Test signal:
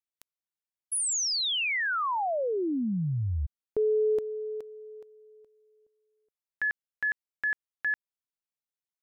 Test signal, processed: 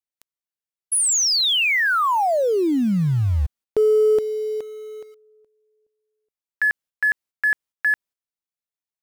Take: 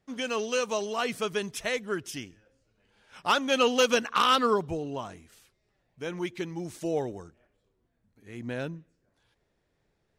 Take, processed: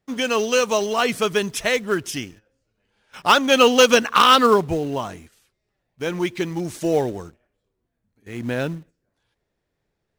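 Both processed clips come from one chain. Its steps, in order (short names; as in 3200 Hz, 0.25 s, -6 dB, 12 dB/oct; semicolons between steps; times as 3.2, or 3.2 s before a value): gate -54 dBFS, range -9 dB; in parallel at -10.5 dB: companded quantiser 4-bit; on the sum: gain +7 dB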